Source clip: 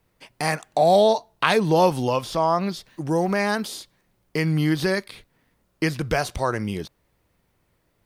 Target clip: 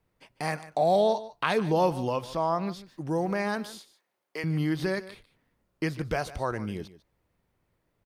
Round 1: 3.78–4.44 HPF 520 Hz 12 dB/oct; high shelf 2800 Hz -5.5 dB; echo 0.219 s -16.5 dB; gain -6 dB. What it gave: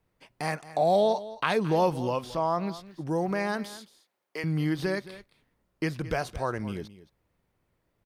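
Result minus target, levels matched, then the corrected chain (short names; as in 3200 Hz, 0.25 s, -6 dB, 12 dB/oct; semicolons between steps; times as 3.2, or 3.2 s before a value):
echo 71 ms late
3.78–4.44 HPF 520 Hz 12 dB/oct; high shelf 2800 Hz -5.5 dB; echo 0.148 s -16.5 dB; gain -6 dB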